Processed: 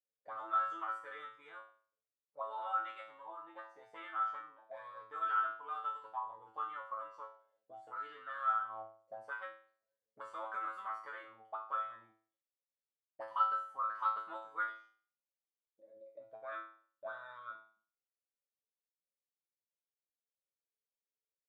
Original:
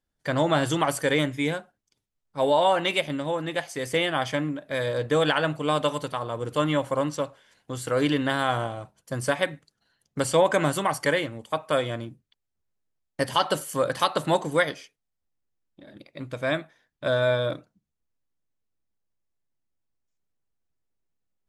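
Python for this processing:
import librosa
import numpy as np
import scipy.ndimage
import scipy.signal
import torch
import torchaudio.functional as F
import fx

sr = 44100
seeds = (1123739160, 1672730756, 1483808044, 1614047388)

y = fx.auto_wah(x, sr, base_hz=500.0, top_hz=1300.0, q=16.0, full_db=-22.0, direction='up')
y = fx.comb_fb(y, sr, f0_hz=110.0, decay_s=0.45, harmonics='all', damping=0.0, mix_pct=100)
y = y * 10.0 ** (12.0 / 20.0)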